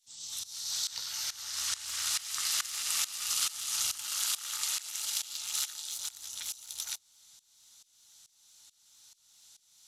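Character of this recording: tremolo saw up 2.3 Hz, depth 90%; SBC

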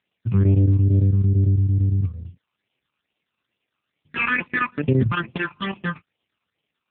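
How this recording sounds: a quantiser's noise floor 12-bit, dither triangular; chopped level 8.9 Hz, depth 65%, duty 85%; phasing stages 12, 2.3 Hz, lowest notch 570–1500 Hz; AMR-NB

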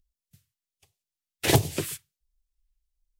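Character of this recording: phasing stages 2, 1.4 Hz, lowest notch 640–1400 Hz

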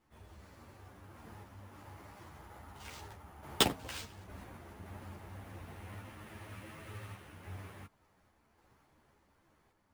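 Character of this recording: random-step tremolo; aliases and images of a low sample rate 12000 Hz, jitter 0%; a shimmering, thickened sound

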